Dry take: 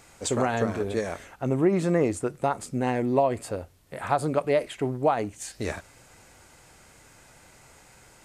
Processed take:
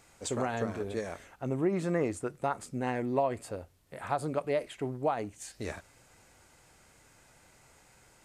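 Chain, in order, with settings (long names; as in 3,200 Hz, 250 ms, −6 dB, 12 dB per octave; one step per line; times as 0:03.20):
0:01.73–0:03.36: dynamic equaliser 1,500 Hz, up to +4 dB, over −37 dBFS, Q 1.1
level −7 dB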